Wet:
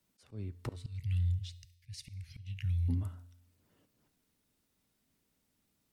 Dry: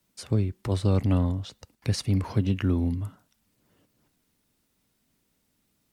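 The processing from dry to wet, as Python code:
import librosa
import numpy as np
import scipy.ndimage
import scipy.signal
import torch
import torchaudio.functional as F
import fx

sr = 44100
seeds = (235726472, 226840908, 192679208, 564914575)

y = fx.ellip_bandstop(x, sr, low_hz=130.0, high_hz=2100.0, order=3, stop_db=40, at=(0.75, 2.88), fade=0.02)
y = fx.auto_swell(y, sr, attack_ms=326.0)
y = fx.comb_fb(y, sr, f0_hz=88.0, decay_s=0.93, harmonics='odd', damping=0.0, mix_pct=50)
y = y + 10.0 ** (-24.0 / 20.0) * np.pad(y, (int(71 * sr / 1000.0), 0))[:len(y)]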